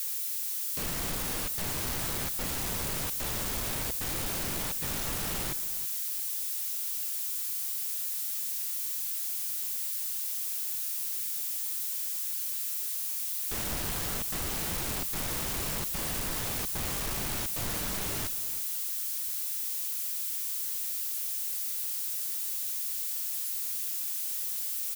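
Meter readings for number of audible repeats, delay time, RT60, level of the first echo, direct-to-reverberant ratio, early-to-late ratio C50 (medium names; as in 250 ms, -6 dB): 1, 321 ms, no reverb, -16.0 dB, no reverb, no reverb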